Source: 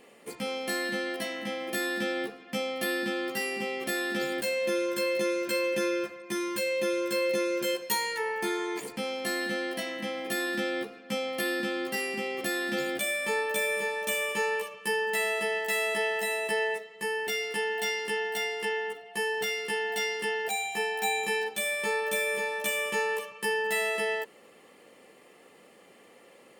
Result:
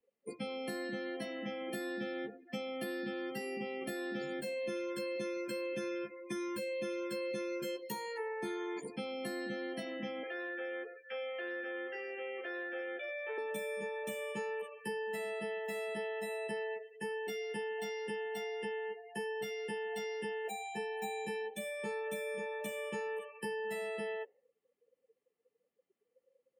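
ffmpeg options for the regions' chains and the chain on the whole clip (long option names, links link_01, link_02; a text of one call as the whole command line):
ffmpeg -i in.wav -filter_complex "[0:a]asettb=1/sr,asplit=3[link_01][link_02][link_03];[link_01]atrim=end=10.234[link_04];[link_02]atrim=start=10.23:end=13.38,asetpts=PTS-STARTPTS,afade=type=in:duration=0.004:curve=qsin,afade=type=out:start_time=3.146:duration=0.004:curve=qsin,asoftclip=type=hard:threshold=-27dB,highpass=frequency=440:width=0.5412,highpass=frequency=440:width=1.3066,equalizer=frequency=810:width_type=q:width=4:gain=-4,equalizer=frequency=1600:width_type=q:width=4:gain=8,equalizer=frequency=2400:width_type=q:width=4:gain=3,equalizer=frequency=4300:width_type=q:width=4:gain=-10,lowpass=frequency=4900:width=0.5412,lowpass=frequency=4900:width=1.3066,aecho=1:1:96|192|288|384:0.211|0.0951|0.0428|0.0193,atrim=end_sample=138915[link_05];[link_03]atrim=start=13.376[link_06];[link_04][link_05]acrossfade=duration=0.004:curve1=hsin:curve2=qsin[link_07];[link_07][link_06]acrossfade=duration=0.004:curve1=qsin:curve2=hsin,afftdn=noise_reduction=34:noise_floor=-39,lowshelf=frequency=190:gain=11,acrossover=split=130|390|910[link_08][link_09][link_10][link_11];[link_08]acompressor=threshold=-54dB:ratio=4[link_12];[link_09]acompressor=threshold=-41dB:ratio=4[link_13];[link_10]acompressor=threshold=-41dB:ratio=4[link_14];[link_11]acompressor=threshold=-44dB:ratio=4[link_15];[link_12][link_13][link_14][link_15]amix=inputs=4:normalize=0,volume=-3dB" out.wav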